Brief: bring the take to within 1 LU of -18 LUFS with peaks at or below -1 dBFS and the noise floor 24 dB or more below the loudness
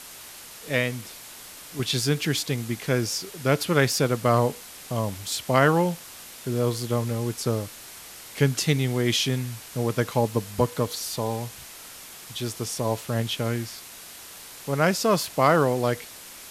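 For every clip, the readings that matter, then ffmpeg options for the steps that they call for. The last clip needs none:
noise floor -43 dBFS; noise floor target -49 dBFS; loudness -25.0 LUFS; peak -4.5 dBFS; loudness target -18.0 LUFS
-> -af "afftdn=nr=6:nf=-43"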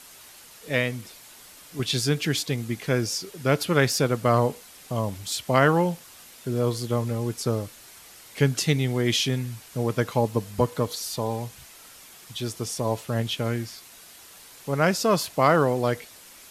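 noise floor -48 dBFS; noise floor target -49 dBFS
-> -af "afftdn=nr=6:nf=-48"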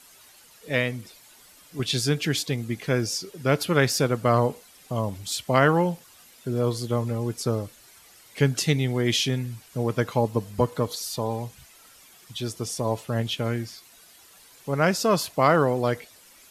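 noise floor -53 dBFS; loudness -25.0 LUFS; peak -4.5 dBFS; loudness target -18.0 LUFS
-> -af "volume=7dB,alimiter=limit=-1dB:level=0:latency=1"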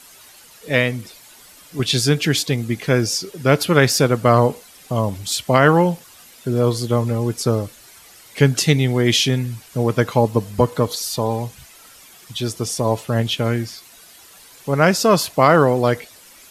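loudness -18.5 LUFS; peak -1.0 dBFS; noise floor -46 dBFS

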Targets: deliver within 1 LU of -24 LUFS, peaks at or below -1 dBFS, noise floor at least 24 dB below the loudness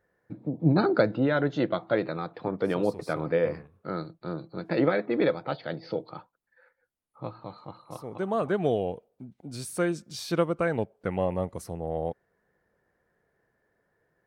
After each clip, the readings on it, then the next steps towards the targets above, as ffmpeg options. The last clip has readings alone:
loudness -28.5 LUFS; peak -8.5 dBFS; loudness target -24.0 LUFS
-> -af "volume=4.5dB"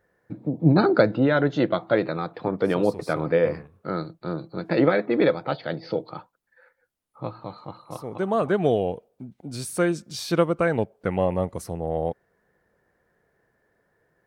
loudness -24.5 LUFS; peak -4.0 dBFS; noise floor -71 dBFS

